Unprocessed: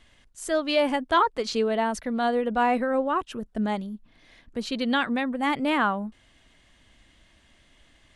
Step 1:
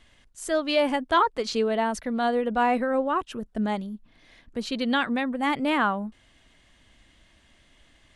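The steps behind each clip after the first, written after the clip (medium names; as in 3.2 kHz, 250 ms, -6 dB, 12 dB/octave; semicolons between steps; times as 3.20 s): no audible change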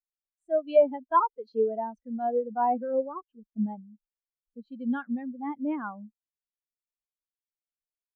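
spectral contrast expander 2.5:1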